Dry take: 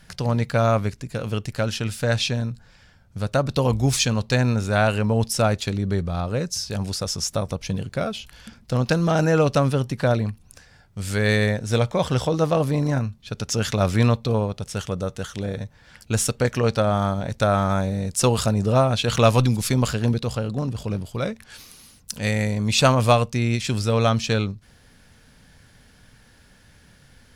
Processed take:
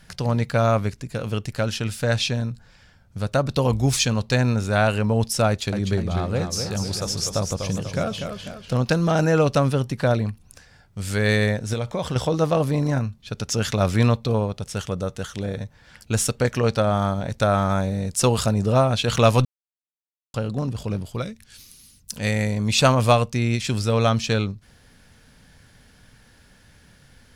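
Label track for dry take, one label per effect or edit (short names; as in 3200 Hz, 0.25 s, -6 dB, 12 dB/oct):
5.480000	8.730000	warbling echo 0.247 s, feedback 47%, depth 118 cents, level -6.5 dB
11.730000	12.160000	compressor 5:1, threshold -21 dBFS
19.450000	20.340000	mute
21.220000	22.110000	bell 830 Hz -14 dB 2.8 oct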